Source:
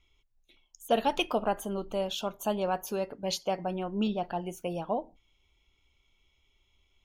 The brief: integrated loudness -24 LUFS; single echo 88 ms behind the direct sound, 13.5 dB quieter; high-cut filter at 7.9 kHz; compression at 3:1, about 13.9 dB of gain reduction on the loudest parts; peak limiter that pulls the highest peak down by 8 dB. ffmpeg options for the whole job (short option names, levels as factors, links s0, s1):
-af "lowpass=7900,acompressor=threshold=0.00891:ratio=3,alimiter=level_in=2.99:limit=0.0631:level=0:latency=1,volume=0.335,aecho=1:1:88:0.211,volume=10"